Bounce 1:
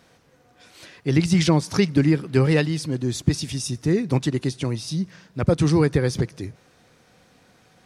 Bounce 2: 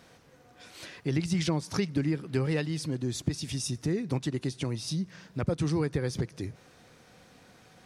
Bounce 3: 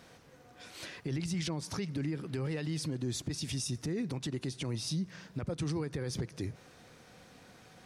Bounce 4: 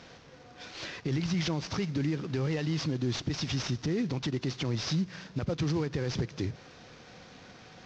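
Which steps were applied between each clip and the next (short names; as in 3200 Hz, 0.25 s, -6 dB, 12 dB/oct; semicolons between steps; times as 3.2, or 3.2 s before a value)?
compressor 2:1, threshold -33 dBFS, peak gain reduction 11.5 dB
limiter -27 dBFS, peak gain reduction 11 dB
CVSD 32 kbps; gain +5 dB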